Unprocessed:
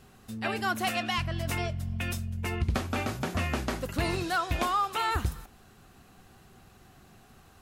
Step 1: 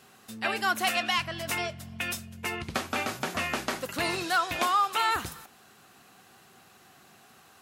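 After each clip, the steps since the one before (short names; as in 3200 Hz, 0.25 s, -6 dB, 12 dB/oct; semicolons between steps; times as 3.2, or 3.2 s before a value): HPF 140 Hz 12 dB/oct; low shelf 490 Hz -9.5 dB; gain +4.5 dB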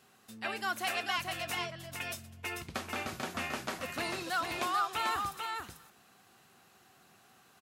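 echo 0.441 s -4.5 dB; gain -7.5 dB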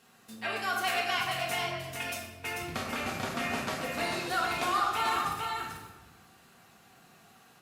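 shoebox room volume 570 m³, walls mixed, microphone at 1.7 m; Opus 64 kbps 48000 Hz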